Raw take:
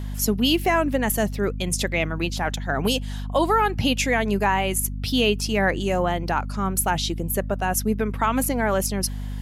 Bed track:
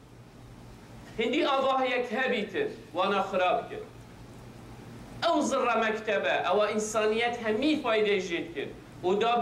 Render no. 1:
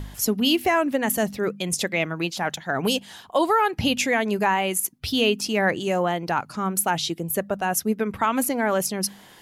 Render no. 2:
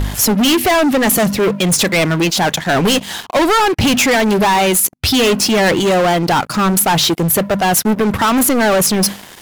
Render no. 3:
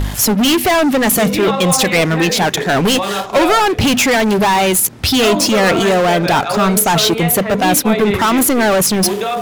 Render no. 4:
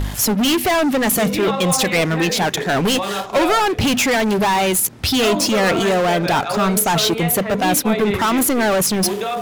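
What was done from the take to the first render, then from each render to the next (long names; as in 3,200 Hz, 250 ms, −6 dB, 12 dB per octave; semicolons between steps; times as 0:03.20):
hum removal 50 Hz, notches 5
leveller curve on the samples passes 5
mix in bed track +6.5 dB
level −4 dB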